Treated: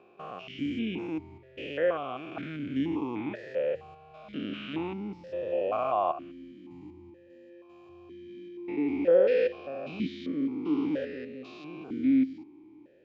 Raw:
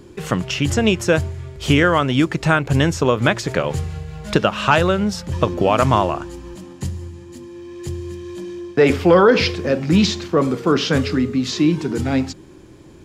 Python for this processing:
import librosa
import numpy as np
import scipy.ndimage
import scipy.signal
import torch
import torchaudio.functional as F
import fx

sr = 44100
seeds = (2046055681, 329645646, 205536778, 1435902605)

y = fx.spec_steps(x, sr, hold_ms=200)
y = fx.air_absorb(y, sr, metres=110.0)
y = fx.vowel_held(y, sr, hz=2.1)